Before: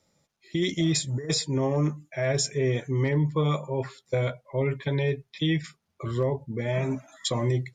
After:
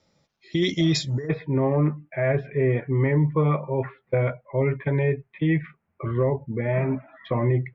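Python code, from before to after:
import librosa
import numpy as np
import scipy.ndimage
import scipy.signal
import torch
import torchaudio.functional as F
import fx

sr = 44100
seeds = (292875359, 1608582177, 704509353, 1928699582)

y = fx.steep_lowpass(x, sr, hz=fx.steps((0.0, 6000.0), (1.27, 2400.0)), slope=36)
y = F.gain(torch.from_numpy(y), 3.5).numpy()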